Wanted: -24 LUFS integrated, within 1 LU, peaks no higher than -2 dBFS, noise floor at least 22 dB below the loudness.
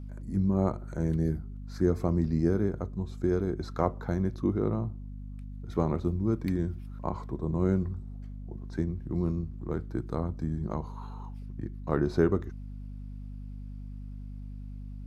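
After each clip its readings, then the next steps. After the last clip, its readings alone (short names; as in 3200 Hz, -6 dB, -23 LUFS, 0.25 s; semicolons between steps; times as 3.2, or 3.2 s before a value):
hum 50 Hz; harmonics up to 250 Hz; hum level -38 dBFS; loudness -30.5 LUFS; peak -10.0 dBFS; loudness target -24.0 LUFS
-> notches 50/100/150/200/250 Hz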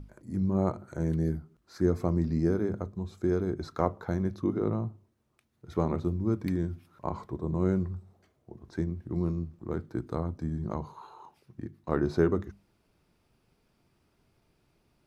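hum none; loudness -31.0 LUFS; peak -10.0 dBFS; loudness target -24.0 LUFS
-> gain +7 dB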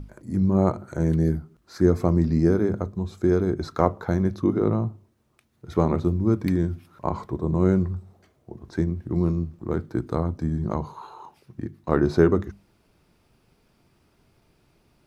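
loudness -24.5 LUFS; peak -3.0 dBFS; noise floor -65 dBFS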